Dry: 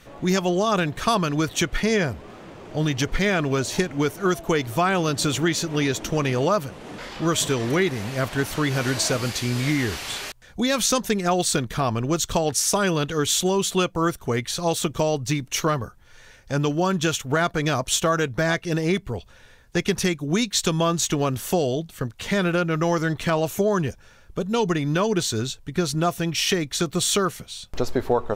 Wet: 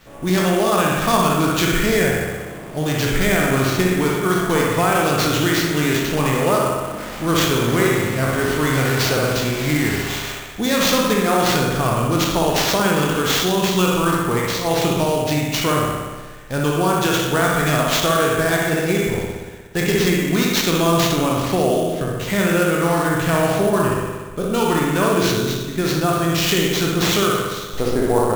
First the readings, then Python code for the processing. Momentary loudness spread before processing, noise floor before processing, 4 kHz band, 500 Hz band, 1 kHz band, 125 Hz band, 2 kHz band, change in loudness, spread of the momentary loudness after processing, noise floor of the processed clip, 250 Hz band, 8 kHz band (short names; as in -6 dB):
7 LU, -50 dBFS, +4.5 dB, +5.0 dB, +6.0 dB, +4.5 dB, +6.0 dB, +5.0 dB, 6 LU, -32 dBFS, +5.0 dB, +1.0 dB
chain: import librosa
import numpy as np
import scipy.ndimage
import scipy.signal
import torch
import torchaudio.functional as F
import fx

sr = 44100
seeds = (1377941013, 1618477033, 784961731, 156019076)

y = fx.spec_trails(x, sr, decay_s=0.57)
y = fx.rev_spring(y, sr, rt60_s=1.4, pass_ms=(60,), chirp_ms=60, drr_db=-1.0)
y = fx.sample_hold(y, sr, seeds[0], rate_hz=10000.0, jitter_pct=20)